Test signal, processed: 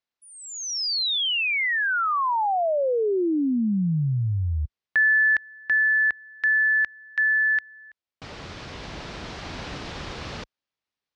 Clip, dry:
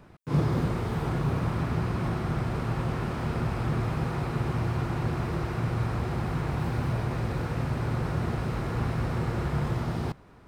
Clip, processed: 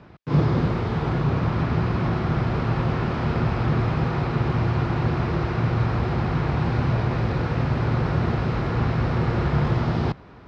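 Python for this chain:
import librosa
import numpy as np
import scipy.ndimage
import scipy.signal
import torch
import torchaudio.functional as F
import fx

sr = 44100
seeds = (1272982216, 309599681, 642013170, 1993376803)

y = scipy.signal.sosfilt(scipy.signal.butter(2, 41.0, 'highpass', fs=sr, output='sos'), x)
y = fx.rider(y, sr, range_db=3, speed_s=2.0)
y = scipy.signal.sosfilt(scipy.signal.butter(4, 5200.0, 'lowpass', fs=sr, output='sos'), y)
y = F.gain(torch.from_numpy(y), 6.0).numpy()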